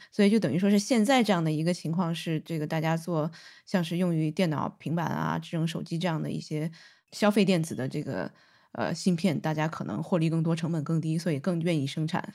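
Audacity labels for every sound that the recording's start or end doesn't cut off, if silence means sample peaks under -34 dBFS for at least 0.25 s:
3.710000	6.680000	sound
7.150000	8.270000	sound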